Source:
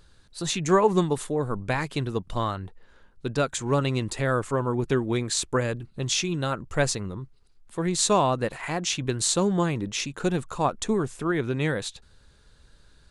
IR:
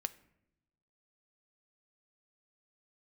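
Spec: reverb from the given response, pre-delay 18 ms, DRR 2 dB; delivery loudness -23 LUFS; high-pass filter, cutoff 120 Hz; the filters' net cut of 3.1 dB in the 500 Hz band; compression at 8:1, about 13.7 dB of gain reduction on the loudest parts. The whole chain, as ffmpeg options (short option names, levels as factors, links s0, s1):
-filter_complex "[0:a]highpass=120,equalizer=f=500:t=o:g=-4,acompressor=threshold=0.0251:ratio=8,asplit=2[s0][s1];[1:a]atrim=start_sample=2205,adelay=18[s2];[s1][s2]afir=irnorm=-1:irlink=0,volume=0.891[s3];[s0][s3]amix=inputs=2:normalize=0,volume=3.76"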